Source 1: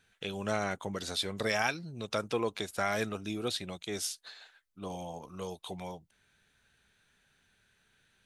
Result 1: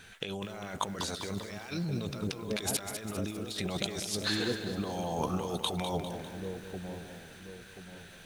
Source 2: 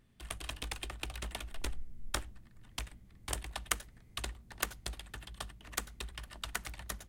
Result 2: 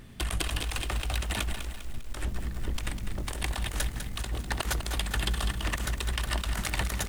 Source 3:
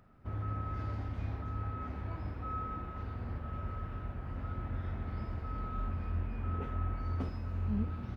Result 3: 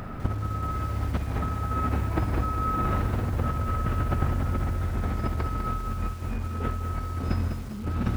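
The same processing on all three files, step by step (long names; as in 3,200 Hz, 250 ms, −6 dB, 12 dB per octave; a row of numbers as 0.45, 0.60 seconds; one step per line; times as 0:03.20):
delay with a low-pass on its return 1,033 ms, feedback 36%, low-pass 460 Hz, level −14 dB
compressor whose output falls as the input rises −46 dBFS, ratio −1
feedback echo at a low word length 200 ms, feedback 55%, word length 10 bits, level −8 dB
normalise the peak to −12 dBFS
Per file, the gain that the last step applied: +8.5, +14.5, +17.5 decibels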